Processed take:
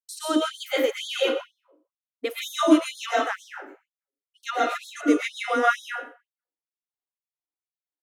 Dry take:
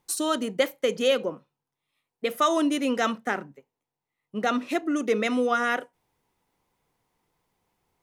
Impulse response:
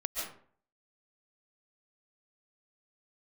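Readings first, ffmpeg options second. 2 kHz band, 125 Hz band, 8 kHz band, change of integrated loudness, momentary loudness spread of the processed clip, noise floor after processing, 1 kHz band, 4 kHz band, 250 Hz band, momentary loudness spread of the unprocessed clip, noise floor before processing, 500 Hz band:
+1.5 dB, under -15 dB, -2.0 dB, +1.0 dB, 15 LU, under -85 dBFS, +1.5 dB, +2.0 dB, +2.0 dB, 8 LU, under -85 dBFS, -0.5 dB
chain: -filter_complex "[0:a]agate=range=-33dB:threshold=-46dB:ratio=3:detection=peak,equalizer=f=300:w=5.2:g=11.5,acrossover=split=260|1100|5000[a][b][c][d];[d]alimiter=level_in=6dB:limit=-24dB:level=0:latency=1:release=291,volume=-6dB[e];[a][b][c][e]amix=inputs=4:normalize=0,asplit=2[f][g];[g]adelay=122.4,volume=-15dB,highshelf=f=4k:g=-2.76[h];[f][h]amix=inputs=2:normalize=0[i];[1:a]atrim=start_sample=2205,asetrate=48510,aresample=44100[j];[i][j]afir=irnorm=-1:irlink=0,afftfilt=real='re*gte(b*sr/1024,230*pow(3300/230,0.5+0.5*sin(2*PI*2.1*pts/sr)))':imag='im*gte(b*sr/1024,230*pow(3300/230,0.5+0.5*sin(2*PI*2.1*pts/sr)))':win_size=1024:overlap=0.75"

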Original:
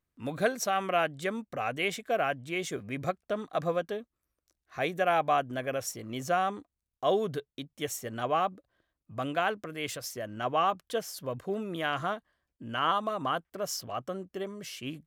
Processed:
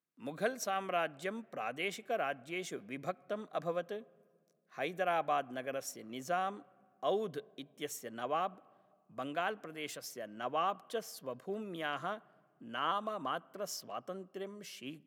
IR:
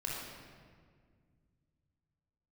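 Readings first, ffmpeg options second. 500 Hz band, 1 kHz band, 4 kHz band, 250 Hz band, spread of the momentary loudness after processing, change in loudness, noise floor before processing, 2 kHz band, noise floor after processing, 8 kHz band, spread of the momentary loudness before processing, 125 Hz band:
-6.5 dB, -7.0 dB, -7.0 dB, -7.0 dB, 11 LU, -7.0 dB, under -85 dBFS, -7.0 dB, -72 dBFS, -7.0 dB, 10 LU, -11.0 dB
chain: -filter_complex "[0:a]highpass=f=160:w=0.5412,highpass=f=160:w=1.3066,asplit=2[a][b];[1:a]atrim=start_sample=2205,lowpass=2.9k[c];[b][c]afir=irnorm=-1:irlink=0,volume=-25dB[d];[a][d]amix=inputs=2:normalize=0,volume=-7dB"

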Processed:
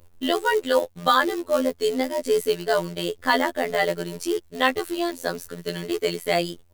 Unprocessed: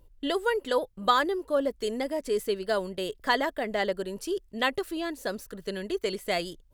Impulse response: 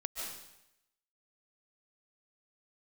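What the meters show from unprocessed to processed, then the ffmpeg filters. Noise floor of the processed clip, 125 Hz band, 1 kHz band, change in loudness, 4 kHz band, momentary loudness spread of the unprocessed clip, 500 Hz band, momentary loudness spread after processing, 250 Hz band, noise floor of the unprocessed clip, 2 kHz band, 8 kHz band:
-54 dBFS, +8.0 dB, +5.0 dB, +5.0 dB, +5.0 dB, 8 LU, +5.0 dB, 8 LU, +5.5 dB, -59 dBFS, +5.5 dB, +7.5 dB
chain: -af "acrusher=bits=4:mode=log:mix=0:aa=0.000001,afftfilt=real='hypot(re,im)*cos(PI*b)':imag='0':win_size=2048:overlap=0.75,acontrast=85,volume=2dB"

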